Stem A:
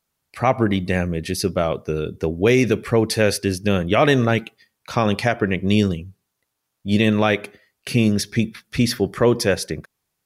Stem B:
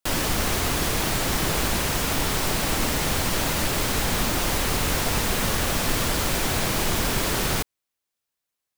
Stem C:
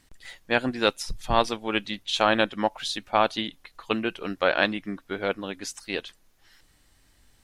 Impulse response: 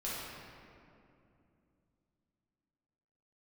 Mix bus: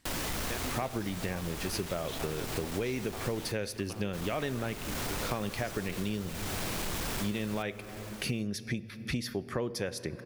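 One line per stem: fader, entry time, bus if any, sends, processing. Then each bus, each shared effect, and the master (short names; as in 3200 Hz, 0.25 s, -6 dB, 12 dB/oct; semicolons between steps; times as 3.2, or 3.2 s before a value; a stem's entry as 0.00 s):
-4.0 dB, 0.35 s, send -20.5 dB, no echo send, dry
-7.0 dB, 0.00 s, muted 3.52–4.13, no send, echo send -15 dB, hard clip -21.5 dBFS, distortion -12 dB
-4.5 dB, 0.00 s, no send, echo send -9.5 dB, compressor, threshold -30 dBFS, peak gain reduction 15 dB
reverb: on, RT60 2.7 s, pre-delay 5 ms
echo: echo 0.786 s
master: compressor 6:1, threshold -31 dBFS, peak gain reduction 15.5 dB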